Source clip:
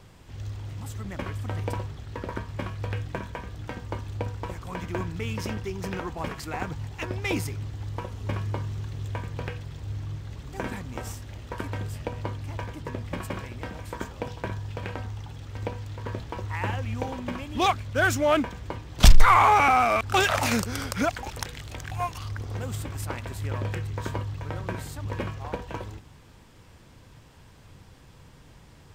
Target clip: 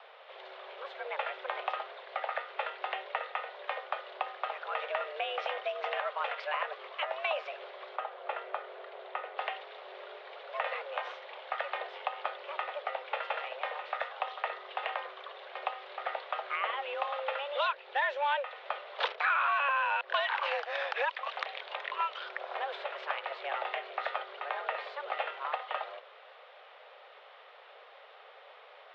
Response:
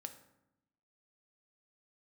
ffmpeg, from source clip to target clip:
-filter_complex "[0:a]highpass=frequency=240:width_type=q:width=0.5412,highpass=frequency=240:width_type=q:width=1.307,lowpass=frequency=3400:width_type=q:width=0.5176,lowpass=frequency=3400:width_type=q:width=0.7071,lowpass=frequency=3400:width_type=q:width=1.932,afreqshift=280,acrossover=split=930|2000[link_01][link_02][link_03];[link_01]acompressor=threshold=-40dB:ratio=4[link_04];[link_02]acompressor=threshold=-41dB:ratio=4[link_05];[link_03]acompressor=threshold=-43dB:ratio=4[link_06];[link_04][link_05][link_06]amix=inputs=3:normalize=0,asettb=1/sr,asplit=3[link_07][link_08][link_09];[link_07]atrim=end=7.964[link_10];[link_08]atrim=start=7.96:end=9.38,asetpts=PTS-STARTPTS,afade=type=in:duration=0.004:curve=qsin,afade=type=out:start_time=1.416:duration=0.004:curve=qsin,highshelf=frequency=2900:gain=-11[link_11];[link_09]atrim=start=9.376[link_12];[link_10][link_11]acrossfade=duration=0.004:curve1=hsin:curve2=qsin[link_13];[link_13][link_12]acrossfade=duration=0.004:curve1=qsin:curve2=hsin,volume=4dB"

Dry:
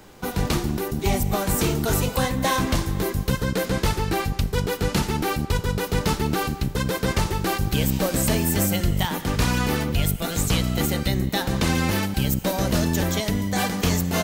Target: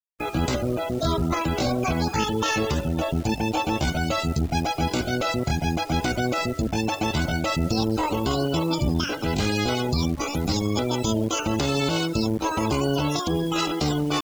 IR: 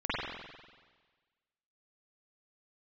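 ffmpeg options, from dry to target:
-filter_complex "[0:a]asetrate=74167,aresample=44100,atempo=0.594604,equalizer=frequency=1800:width_type=o:width=0.27:gain=-8,bandreject=frequency=95.16:width_type=h:width=4,bandreject=frequency=190.32:width_type=h:width=4,bandreject=frequency=285.48:width_type=h:width=4,bandreject=frequency=380.64:width_type=h:width=4,bandreject=frequency=475.8:width_type=h:width=4,bandreject=frequency=570.96:width_type=h:width=4,bandreject=frequency=666.12:width_type=h:width=4,bandreject=frequency=761.28:width_type=h:width=4,bandreject=frequency=856.44:width_type=h:width=4,bandreject=frequency=951.6:width_type=h:width=4,bandreject=frequency=1046.76:width_type=h:width=4,bandreject=frequency=1141.92:width_type=h:width=4,bandreject=frequency=1237.08:width_type=h:width=4,bandreject=frequency=1332.24:width_type=h:width=4,bandreject=frequency=1427.4:width_type=h:width=4,bandreject=frequency=1522.56:width_type=h:width=4,bandreject=frequency=1617.72:width_type=h:width=4,bandreject=frequency=1712.88:width_type=h:width=4,bandreject=frequency=1808.04:width_type=h:width=4,bandreject=frequency=1903.2:width_type=h:width=4,bandreject=frequency=1998.36:width_type=h:width=4,bandreject=frequency=2093.52:width_type=h:width=4,alimiter=limit=-14dB:level=0:latency=1:release=53,acrossover=split=6900[link_01][link_02];[link_02]acompressor=threshold=-46dB:ratio=4:attack=1:release=60[link_03];[link_01][link_03]amix=inputs=2:normalize=0,highshelf=frequency=2400:gain=4.5,afftfilt=real='re*gte(hypot(re,im),0.0282)':imag='im*gte(hypot(re,im),0.0282)':win_size=1024:overlap=0.75,acrusher=bits=8:dc=4:mix=0:aa=0.000001"

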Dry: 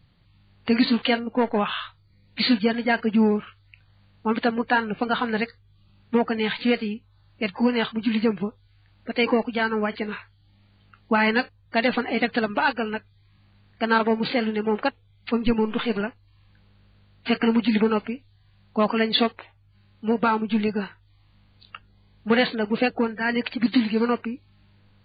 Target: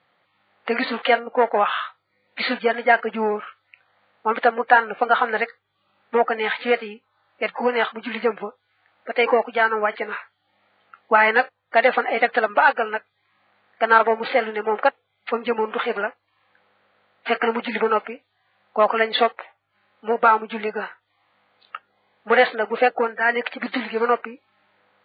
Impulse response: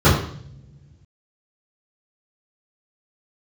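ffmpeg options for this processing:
-af "highpass=500,equalizer=frequency=530:width_type=q:width=4:gain=6,equalizer=frequency=750:width_type=q:width=4:gain=6,equalizer=frequency=1300:width_type=q:width=4:gain=5,equalizer=frequency=1900:width_type=q:width=4:gain=3,equalizer=frequency=2800:width_type=q:width=4:gain=-4,lowpass=frequency=3300:width=0.5412,lowpass=frequency=3300:width=1.3066,volume=3.5dB"

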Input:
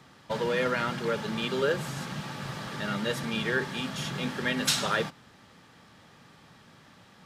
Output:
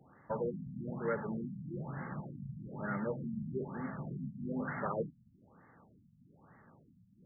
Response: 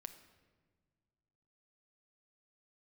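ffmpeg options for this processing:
-af "afftfilt=real='re*lt(b*sr/1024,230*pow(2200/230,0.5+0.5*sin(2*PI*1.1*pts/sr)))':imag='im*lt(b*sr/1024,230*pow(2200/230,0.5+0.5*sin(2*PI*1.1*pts/sr)))':win_size=1024:overlap=0.75,volume=-5dB"

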